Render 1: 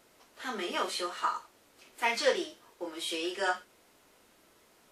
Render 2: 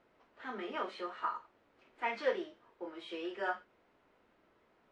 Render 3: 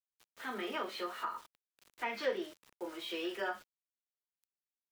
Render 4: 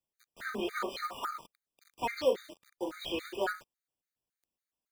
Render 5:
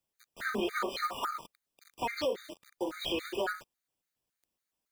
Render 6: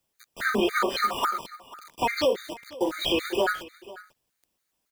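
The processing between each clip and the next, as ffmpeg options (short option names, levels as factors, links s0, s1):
-af "lowpass=2100,volume=0.562"
-filter_complex "[0:a]aeval=exprs='val(0)*gte(abs(val(0)),0.00126)':c=same,acrossover=split=460[s0][s1];[s1]acompressor=threshold=0.01:ratio=3[s2];[s0][s2]amix=inputs=2:normalize=0,highshelf=f=2700:g=9.5,volume=1.19"
-filter_complex "[0:a]asplit=2[s0][s1];[s1]acrusher=samples=24:mix=1:aa=0.000001:lfo=1:lforange=24:lforate=0.76,volume=0.398[s2];[s0][s2]amix=inputs=2:normalize=0,afftfilt=real='re*gt(sin(2*PI*3.6*pts/sr)*(1-2*mod(floor(b*sr/1024/1200),2)),0)':imag='im*gt(sin(2*PI*3.6*pts/sr)*(1-2*mod(floor(b*sr/1024/1200),2)),0)':win_size=1024:overlap=0.75,volume=1.68"
-af "alimiter=level_in=1.41:limit=0.0631:level=0:latency=1:release=202,volume=0.708,volume=1.68"
-af "aecho=1:1:493:0.112,volume=2.66"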